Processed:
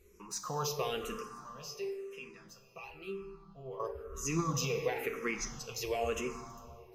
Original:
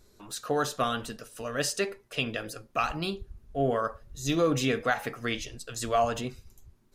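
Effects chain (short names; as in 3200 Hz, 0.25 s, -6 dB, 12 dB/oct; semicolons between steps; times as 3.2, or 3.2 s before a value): ripple EQ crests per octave 0.79, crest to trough 12 dB; limiter -20 dBFS, peak gain reduction 8 dB; 1.25–3.8 resonator bank C3 major, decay 0.2 s; plate-style reverb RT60 2.5 s, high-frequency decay 0.6×, DRR 7 dB; endless phaser -0.99 Hz; gain -1.5 dB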